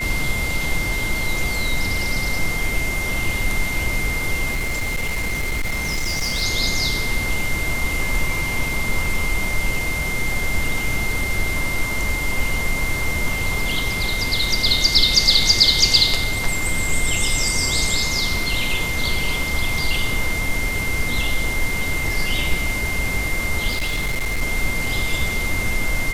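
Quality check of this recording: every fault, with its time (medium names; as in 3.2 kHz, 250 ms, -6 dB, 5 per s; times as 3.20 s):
whine 2.1 kHz -24 dBFS
4.51–6.43 s: clipped -18.5 dBFS
23.70–24.42 s: clipped -18 dBFS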